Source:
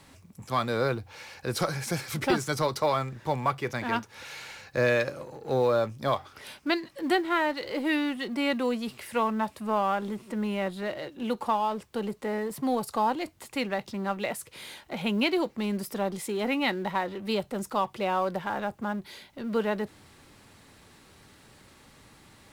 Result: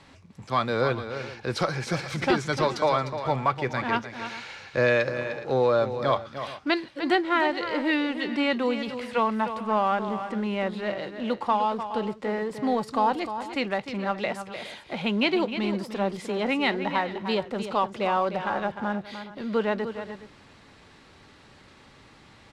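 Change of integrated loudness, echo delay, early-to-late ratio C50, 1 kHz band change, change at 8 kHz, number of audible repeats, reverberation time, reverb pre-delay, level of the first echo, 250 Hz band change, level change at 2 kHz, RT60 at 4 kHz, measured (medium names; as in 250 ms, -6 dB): +2.5 dB, 303 ms, no reverb, +3.0 dB, no reading, 2, no reverb, no reverb, -10.0 dB, +2.0 dB, +3.5 dB, no reverb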